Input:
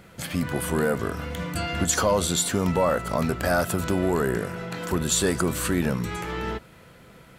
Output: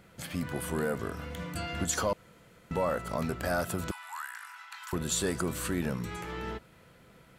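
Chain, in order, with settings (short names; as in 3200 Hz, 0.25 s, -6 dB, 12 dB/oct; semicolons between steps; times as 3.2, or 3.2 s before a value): 2.13–2.71 room tone; 3.91–4.93 steep high-pass 860 Hz 72 dB/oct; gain -7.5 dB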